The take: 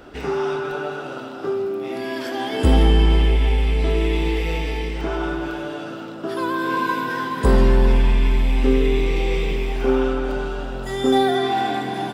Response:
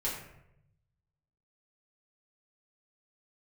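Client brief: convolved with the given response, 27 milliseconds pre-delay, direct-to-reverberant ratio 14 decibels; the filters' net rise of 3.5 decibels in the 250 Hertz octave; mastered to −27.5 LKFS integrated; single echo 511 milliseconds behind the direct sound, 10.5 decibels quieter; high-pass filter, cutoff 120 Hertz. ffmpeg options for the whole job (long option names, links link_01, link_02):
-filter_complex "[0:a]highpass=120,equalizer=frequency=250:width_type=o:gain=4.5,aecho=1:1:511:0.299,asplit=2[link_01][link_02];[1:a]atrim=start_sample=2205,adelay=27[link_03];[link_02][link_03]afir=irnorm=-1:irlink=0,volume=-19dB[link_04];[link_01][link_04]amix=inputs=2:normalize=0,volume=-6dB"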